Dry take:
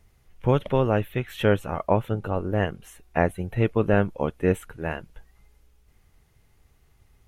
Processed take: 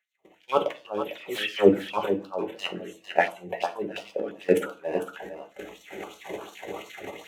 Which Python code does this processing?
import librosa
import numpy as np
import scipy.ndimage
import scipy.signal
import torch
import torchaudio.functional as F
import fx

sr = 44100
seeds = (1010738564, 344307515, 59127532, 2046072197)

y = fx.wiener(x, sr, points=9)
y = fx.recorder_agc(y, sr, target_db=-8.5, rise_db_per_s=25.0, max_gain_db=30)
y = scipy.signal.sosfilt(scipy.signal.butter(2, 43.0, 'highpass', fs=sr, output='sos'), y)
y = fx.transient(y, sr, attack_db=-7, sustain_db=10)
y = fx.level_steps(y, sr, step_db=19)
y = fx.dispersion(y, sr, late='lows', ms=131.0, hz=2000.0, at=(1.01, 1.88))
y = fx.filter_lfo_highpass(y, sr, shape='sine', hz=2.8, low_hz=350.0, high_hz=4800.0, q=2.5)
y = y + 10.0 ** (-9.5 / 20.0) * np.pad(y, (int(451 * sr / 1000.0), 0))[:len(y)]
y = fx.rev_fdn(y, sr, rt60_s=0.35, lf_ratio=1.2, hf_ratio=0.75, size_ms=31.0, drr_db=3.5)
y = fx.filter_held_notch(y, sr, hz=5.8, low_hz=1000.0, high_hz=2000.0)
y = y * 10.0 ** (6.0 / 20.0)